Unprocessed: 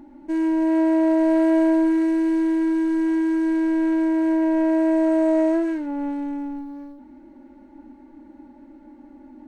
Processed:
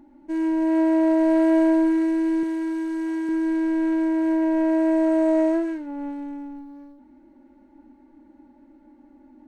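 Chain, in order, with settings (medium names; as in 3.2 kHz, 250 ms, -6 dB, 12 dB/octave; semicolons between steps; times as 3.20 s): 2.43–3.29 s: tone controls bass -9 dB, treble +3 dB; upward expansion 1.5:1, over -29 dBFS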